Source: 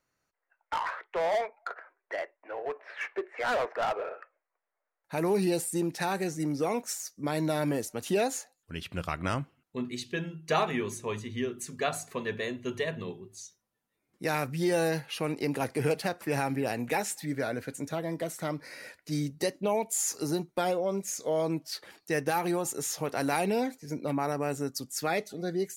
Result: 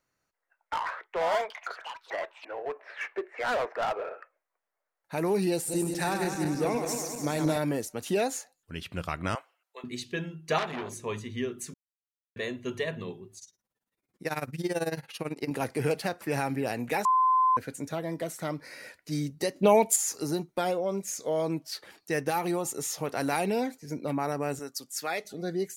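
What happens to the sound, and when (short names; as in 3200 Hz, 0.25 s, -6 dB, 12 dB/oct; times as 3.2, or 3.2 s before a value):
1.04–3.01 echoes that change speed 92 ms, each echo +7 st, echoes 3, each echo -6 dB
5.54–7.58 regenerating reverse delay 0.101 s, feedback 74%, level -5.5 dB
9.35–9.84 inverse Chebyshev high-pass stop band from 210 Hz, stop band 50 dB
10.58–11.02 core saturation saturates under 2300 Hz
11.74–12.36 mute
13.38–15.51 tremolo 18 Hz, depth 87%
17.05–17.57 bleep 1030 Hz -19.5 dBFS
19.56–19.96 gain +8 dB
22.3–22.97 notch 1600 Hz, Q 11
24.59–25.25 HPF 690 Hz 6 dB/oct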